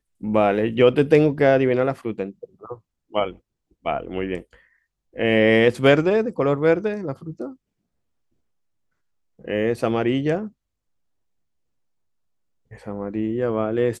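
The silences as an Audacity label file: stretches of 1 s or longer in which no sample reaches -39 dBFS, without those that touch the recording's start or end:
7.530000	9.390000	silence
10.490000	12.710000	silence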